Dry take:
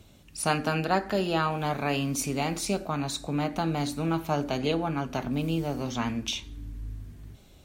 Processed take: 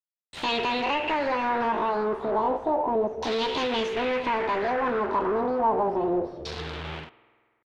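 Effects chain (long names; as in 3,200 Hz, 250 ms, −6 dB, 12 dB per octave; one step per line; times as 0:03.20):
fade-out on the ending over 1.49 s
noise gate −47 dBFS, range −48 dB
Chebyshev band-stop filter 650–1,700 Hz, order 4
in parallel at −1 dB: brickwall limiter −23.5 dBFS, peak gain reduction 7.5 dB
on the sum: downward compressor 20 to 1, threshold −26 dBFS, peak gain reduction 8 dB
pitch shifter +7.5 semitones
log-companded quantiser 4 bits
mid-hump overdrive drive 23 dB, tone 3,800 Hz, clips at −18 dBFS
spring reverb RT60 1.7 s, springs 48 ms, chirp 55 ms, DRR 17 dB
auto-filter low-pass saw down 0.31 Hz 590–4,300 Hz
level −2 dB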